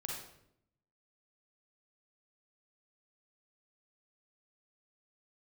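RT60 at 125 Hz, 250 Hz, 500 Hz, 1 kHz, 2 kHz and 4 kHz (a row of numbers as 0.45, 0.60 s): 1.1, 1.0, 0.80, 0.65, 0.60, 0.55 s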